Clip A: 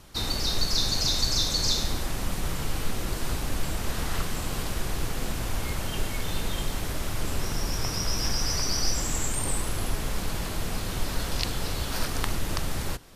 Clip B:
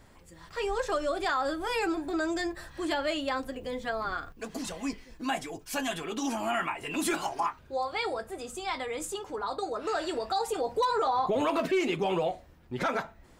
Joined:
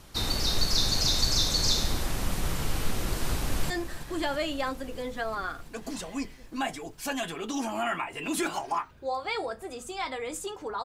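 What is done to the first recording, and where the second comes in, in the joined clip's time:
clip A
3.34–3.7 echo throw 0.33 s, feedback 80%, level -11 dB
3.7 switch to clip B from 2.38 s

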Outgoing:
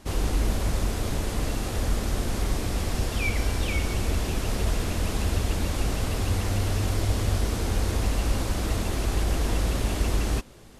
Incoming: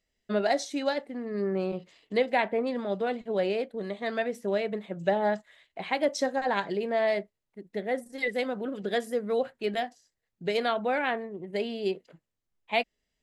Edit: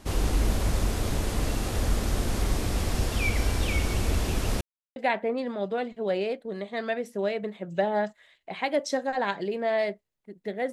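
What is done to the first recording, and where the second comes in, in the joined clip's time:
outgoing
4.61–4.96 mute
4.96 switch to incoming from 2.25 s

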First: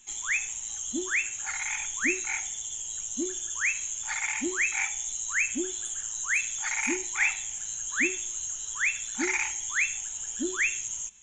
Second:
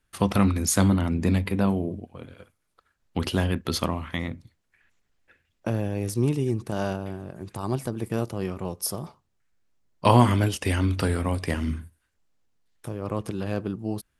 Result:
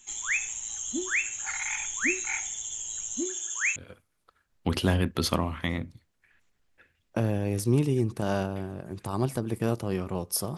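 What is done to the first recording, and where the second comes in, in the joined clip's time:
first
3.2–3.76 HPF 160 Hz -> 630 Hz
3.76 switch to second from 2.26 s

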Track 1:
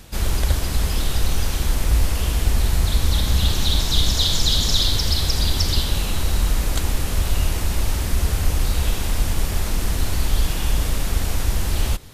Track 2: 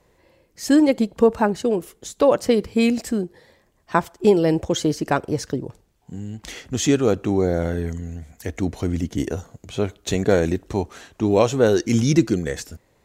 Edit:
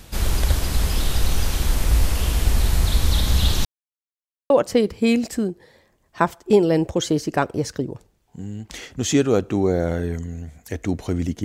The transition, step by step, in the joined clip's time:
track 1
3.65–4.5 mute
4.5 switch to track 2 from 2.24 s

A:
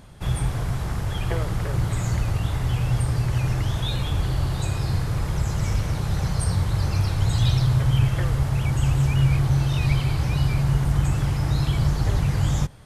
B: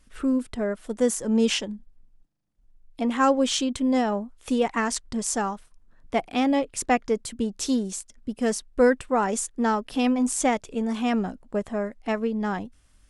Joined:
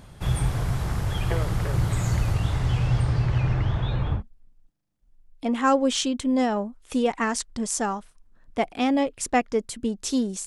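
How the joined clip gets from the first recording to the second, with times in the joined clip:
A
2.34–4.23 LPF 11000 Hz -> 1400 Hz
4.18 switch to B from 1.74 s, crossfade 0.10 s

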